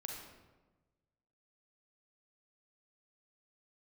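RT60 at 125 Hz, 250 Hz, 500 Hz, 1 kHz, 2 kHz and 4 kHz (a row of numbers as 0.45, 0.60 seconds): 1.6, 1.4, 1.3, 1.1, 0.90, 0.75 seconds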